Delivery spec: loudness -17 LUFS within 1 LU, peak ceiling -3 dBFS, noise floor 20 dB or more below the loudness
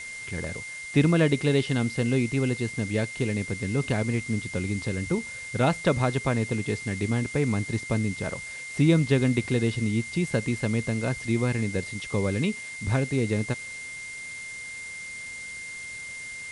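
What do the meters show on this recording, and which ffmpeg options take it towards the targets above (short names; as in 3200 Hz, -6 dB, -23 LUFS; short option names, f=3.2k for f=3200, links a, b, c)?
steady tone 2100 Hz; tone level -36 dBFS; noise floor -38 dBFS; noise floor target -47 dBFS; loudness -27.0 LUFS; peak -10.0 dBFS; loudness target -17.0 LUFS
-> -af "bandreject=f=2.1k:w=30"
-af "afftdn=nr=9:nf=-38"
-af "volume=10dB,alimiter=limit=-3dB:level=0:latency=1"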